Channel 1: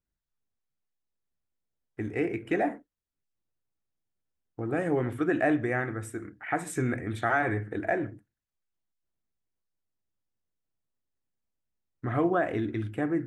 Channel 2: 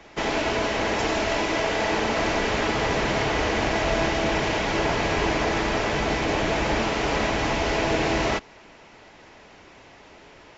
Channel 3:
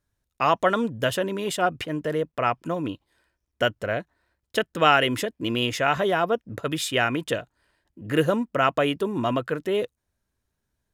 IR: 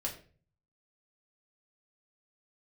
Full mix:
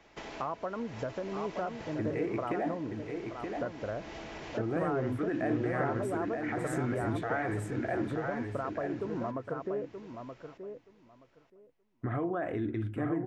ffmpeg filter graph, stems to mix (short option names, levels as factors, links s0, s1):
-filter_complex "[0:a]highshelf=f=2400:g=-8.5,alimiter=level_in=1.12:limit=0.0631:level=0:latency=1:release=93,volume=0.891,volume=1.06,asplit=3[s0][s1][s2];[s1]volume=0.562[s3];[1:a]acompressor=threshold=0.0355:ratio=6,volume=0.251,asplit=2[s4][s5];[s5]volume=0.282[s6];[2:a]lowpass=f=1300:w=0.5412,lowpass=f=1300:w=1.3066,volume=0.631,asplit=2[s7][s8];[s8]volume=0.178[s9];[s2]apad=whole_len=466338[s10];[s4][s10]sidechaincompress=threshold=0.00224:ratio=3:attack=16:release=872[s11];[s11][s7]amix=inputs=2:normalize=0,acompressor=threshold=0.0224:ratio=6,volume=1[s12];[s3][s6][s9]amix=inputs=3:normalize=0,aecho=0:1:925|1850|2775:1|0.16|0.0256[s13];[s0][s12][s13]amix=inputs=3:normalize=0"